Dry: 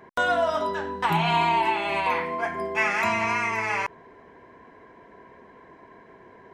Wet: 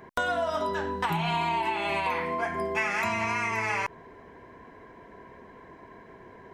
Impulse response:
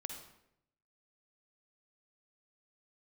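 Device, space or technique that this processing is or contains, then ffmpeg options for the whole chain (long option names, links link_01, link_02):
ASMR close-microphone chain: -af "lowshelf=frequency=130:gain=7.5,acompressor=threshold=-25dB:ratio=5,highshelf=frequency=6100:gain=5"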